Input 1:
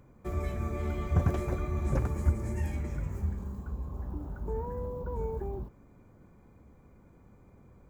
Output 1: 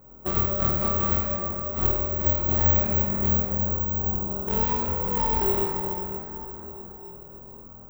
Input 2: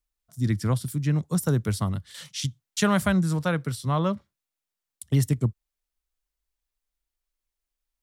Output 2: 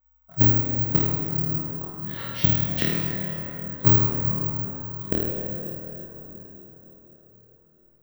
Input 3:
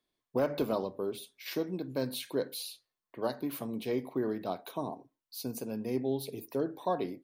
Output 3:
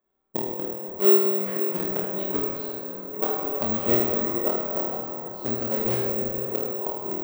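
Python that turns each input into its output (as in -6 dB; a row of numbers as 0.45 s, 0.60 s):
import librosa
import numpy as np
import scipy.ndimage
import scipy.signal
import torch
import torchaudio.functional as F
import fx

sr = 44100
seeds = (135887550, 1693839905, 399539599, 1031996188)

p1 = scipy.signal.sosfilt(scipy.signal.butter(2, 1000.0, 'lowpass', fs=sr, output='sos'), x)
p2 = fx.low_shelf(p1, sr, hz=470.0, db=-9.5)
p3 = fx.hum_notches(p2, sr, base_hz=50, count=10)
p4 = p3 + 0.45 * np.pad(p3, (int(5.3 * sr / 1000.0), 0))[:len(p3)]
p5 = fx.quant_dither(p4, sr, seeds[0], bits=6, dither='none')
p6 = p4 + (p5 * librosa.db_to_amplitude(-7.0))
p7 = fx.gate_flip(p6, sr, shuts_db=-27.0, range_db=-40)
p8 = p7 + fx.room_flutter(p7, sr, wall_m=4.4, rt60_s=0.67, dry=0)
p9 = fx.rev_plate(p8, sr, seeds[1], rt60_s=4.7, hf_ratio=0.4, predelay_ms=0, drr_db=-0.5)
p10 = (np.kron(scipy.signal.resample_poly(p9, 1, 2), np.eye(2)[0]) * 2)[:len(p9)]
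y = p10 * 10.0 ** (-26 / 20.0) / np.sqrt(np.mean(np.square(p10)))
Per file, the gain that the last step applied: +8.0 dB, +16.0 dB, +9.5 dB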